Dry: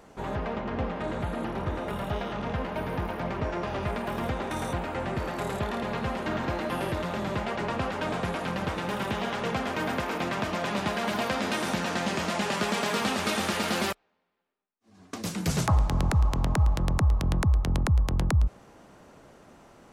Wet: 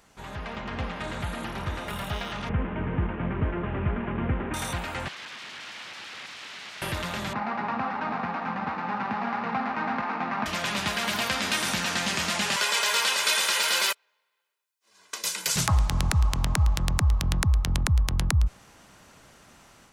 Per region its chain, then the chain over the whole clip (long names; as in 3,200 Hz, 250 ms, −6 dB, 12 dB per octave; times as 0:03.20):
0:02.49–0:04.54: variable-slope delta modulation 16 kbit/s + low-pass filter 1,700 Hz + low shelf with overshoot 500 Hz +6.5 dB, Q 1.5
0:05.08–0:06.82: drawn EQ curve 240 Hz 0 dB, 410 Hz −30 dB, 1,700 Hz +4 dB, 13,000 Hz −17 dB + wrap-around overflow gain 36 dB + band-pass filter 180–2,900 Hz
0:07.33–0:10.46: running median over 15 samples + loudspeaker in its box 200–3,400 Hz, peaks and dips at 230 Hz +10 dB, 370 Hz −4 dB, 570 Hz −4 dB, 810 Hz +10 dB, 1,200 Hz +5 dB, 3,200 Hz −9 dB
0:12.56–0:15.56: high-pass filter 460 Hz + comb filter 2 ms, depth 61%
whole clip: guitar amp tone stack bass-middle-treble 5-5-5; automatic gain control gain up to 6 dB; level +8.5 dB